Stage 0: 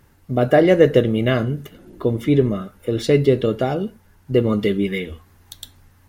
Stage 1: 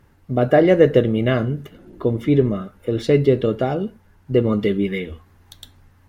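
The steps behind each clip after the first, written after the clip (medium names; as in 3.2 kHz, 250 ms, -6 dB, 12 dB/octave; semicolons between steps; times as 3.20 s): treble shelf 4.4 kHz -9 dB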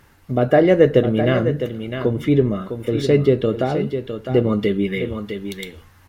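on a send: delay 657 ms -9.5 dB; on the sum: tape noise reduction on one side only encoder only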